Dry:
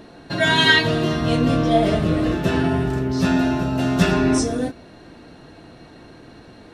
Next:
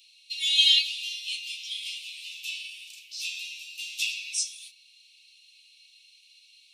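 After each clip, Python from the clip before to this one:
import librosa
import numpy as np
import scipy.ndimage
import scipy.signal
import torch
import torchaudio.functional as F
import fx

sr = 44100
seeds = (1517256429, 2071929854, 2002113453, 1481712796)

y = scipy.signal.sosfilt(scipy.signal.butter(16, 2400.0, 'highpass', fs=sr, output='sos'), x)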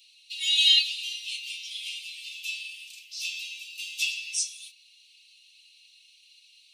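y = x + 0.72 * np.pad(x, (int(4.2 * sr / 1000.0), 0))[:len(x)]
y = y * librosa.db_to_amplitude(-1.5)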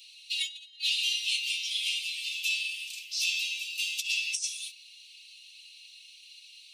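y = fx.over_compress(x, sr, threshold_db=-32.0, ratio=-0.5)
y = y * librosa.db_to_amplitude(1.5)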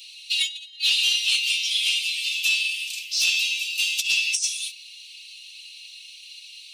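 y = 10.0 ** (-18.5 / 20.0) * np.tanh(x / 10.0 ** (-18.5 / 20.0))
y = y * librosa.db_to_amplitude(8.5)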